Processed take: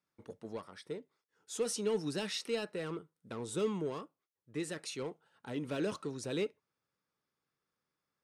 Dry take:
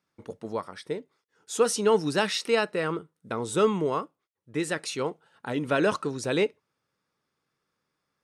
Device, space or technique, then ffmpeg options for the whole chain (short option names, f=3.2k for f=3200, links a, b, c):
one-band saturation: -filter_complex "[0:a]acrossover=split=510|2600[a][b][c];[b]asoftclip=type=tanh:threshold=-36.5dB[d];[a][d][c]amix=inputs=3:normalize=0,volume=-8.5dB"